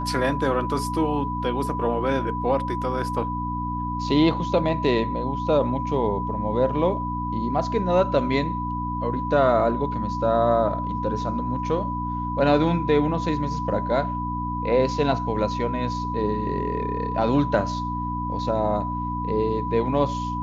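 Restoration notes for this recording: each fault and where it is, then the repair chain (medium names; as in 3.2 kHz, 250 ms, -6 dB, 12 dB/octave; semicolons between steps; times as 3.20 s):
hum 60 Hz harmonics 5 -30 dBFS
whine 990 Hz -28 dBFS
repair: de-hum 60 Hz, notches 5; band-stop 990 Hz, Q 30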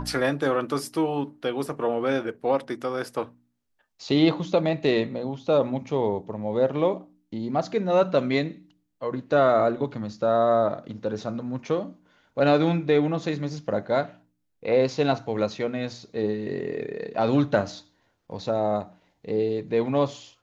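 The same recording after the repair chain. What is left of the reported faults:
nothing left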